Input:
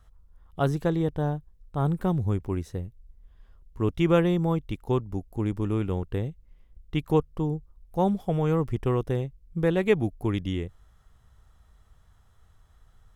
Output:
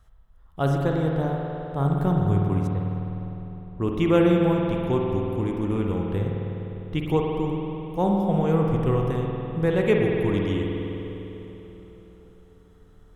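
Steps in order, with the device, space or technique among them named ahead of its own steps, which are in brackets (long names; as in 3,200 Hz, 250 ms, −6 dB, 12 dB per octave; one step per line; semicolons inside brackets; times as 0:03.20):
0:02.67–0:03.97: low-pass that shuts in the quiet parts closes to 440 Hz, open at −24.5 dBFS
dub delay into a spring reverb (feedback echo with a low-pass in the loop 289 ms, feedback 73%, low-pass 2,700 Hz, level −21 dB; spring reverb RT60 3.3 s, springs 50 ms, chirp 35 ms, DRR −0.5 dB)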